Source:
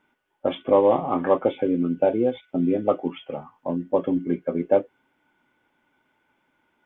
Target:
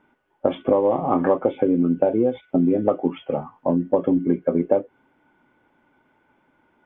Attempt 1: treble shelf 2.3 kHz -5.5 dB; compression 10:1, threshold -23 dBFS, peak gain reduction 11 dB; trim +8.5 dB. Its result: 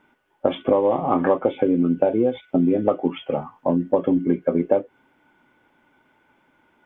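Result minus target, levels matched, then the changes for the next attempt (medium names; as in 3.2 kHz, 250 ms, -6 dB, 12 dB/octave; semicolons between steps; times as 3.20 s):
4 kHz band +5.5 dB
change: treble shelf 2.3 kHz -14.5 dB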